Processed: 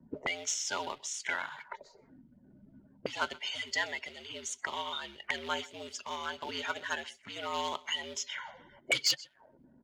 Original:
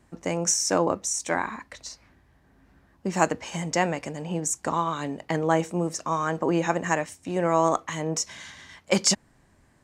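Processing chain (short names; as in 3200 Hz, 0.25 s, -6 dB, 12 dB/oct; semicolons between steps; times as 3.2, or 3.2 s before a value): bin magnitudes rounded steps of 30 dB; ripple EQ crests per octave 1.8, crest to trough 7 dB; in parallel at -12 dB: companded quantiser 4-bit; on the sum: bell 7700 Hz -6 dB 0.95 oct; on a send: echo 0.128 s -23 dB; on the sum: auto-wah 260–3400 Hz, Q 3.8, up, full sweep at -27.5 dBFS; frequency shift -72 Hz; sine folder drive 7 dB, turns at -17.5 dBFS; gain -2.5 dB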